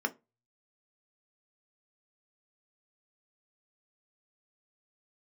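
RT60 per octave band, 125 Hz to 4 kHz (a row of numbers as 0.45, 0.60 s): 0.70, 0.25, 0.25, 0.25, 0.20, 0.15 s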